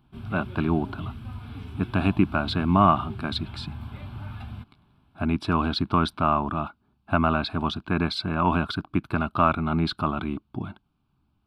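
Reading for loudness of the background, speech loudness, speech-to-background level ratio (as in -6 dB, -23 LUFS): -39.0 LUFS, -25.5 LUFS, 13.5 dB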